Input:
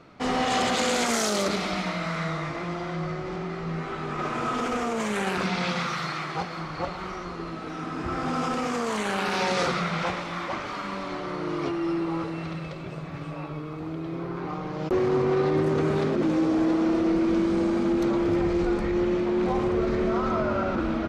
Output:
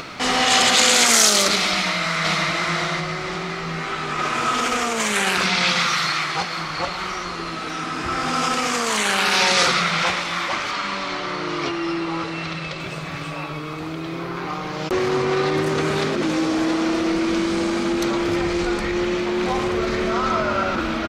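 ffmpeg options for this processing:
ffmpeg -i in.wav -filter_complex "[0:a]asplit=2[link_01][link_02];[link_02]afade=type=in:start_time=1.71:duration=0.01,afade=type=out:start_time=2.47:duration=0.01,aecho=0:1:530|1060|1590|2120:0.794328|0.238298|0.0714895|0.0214469[link_03];[link_01][link_03]amix=inputs=2:normalize=0,asettb=1/sr,asplit=3[link_04][link_05][link_06];[link_04]atrim=end=10.714[link_07];[link_05]atrim=start=10.71:end=12.8,asetpts=PTS-STARTPTS,afade=type=in:duration=0.004:curve=qsin,afade=type=out:start_time=2.086:duration=0.004:curve=qsin,lowpass=6900[link_08];[link_06]atrim=start=12.796[link_09];[link_07][link_08]acrossfade=duration=0.004:curve1=hsin:curve2=qsin[link_10];[link_10][link_09]acrossfade=duration=0.004:curve1=qsin:curve2=hsin,tiltshelf=frequency=1300:gain=-7.5,acompressor=mode=upward:threshold=-32dB:ratio=2.5,volume=8dB" out.wav

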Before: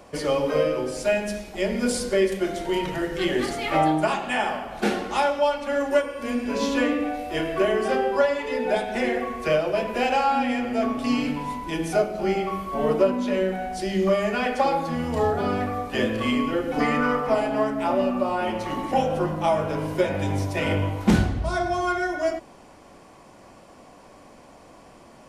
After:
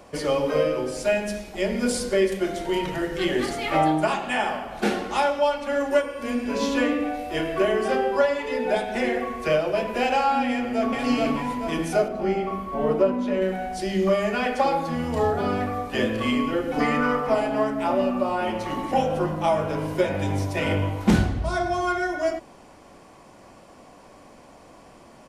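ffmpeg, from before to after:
ffmpeg -i in.wav -filter_complex "[0:a]asplit=2[link_01][link_02];[link_02]afade=type=in:start_time=10.49:duration=0.01,afade=type=out:start_time=10.98:duration=0.01,aecho=0:1:430|860|1290|1720|2150|2580|3010:0.891251|0.445625|0.222813|0.111406|0.0557032|0.0278516|0.0139258[link_03];[link_01][link_03]amix=inputs=2:normalize=0,asettb=1/sr,asplit=3[link_04][link_05][link_06];[link_04]atrim=end=12.084[link_07];[link_05]atrim=start=12.08:end=13.42,asetpts=PTS-STARTPTS,afade=type=in:duration=0.004:curve=qsin,afade=type=out:start_time=1.336:duration=0.004:curve=qsin,highshelf=frequency=2500:gain=-8.5[link_08];[link_06]atrim=start=13.416[link_09];[link_07][link_08]acrossfade=duration=0.004:curve1=hsin:curve2=qsin[link_10];[link_10][link_09]acrossfade=duration=0.004:curve1=qsin:curve2=hsin" out.wav

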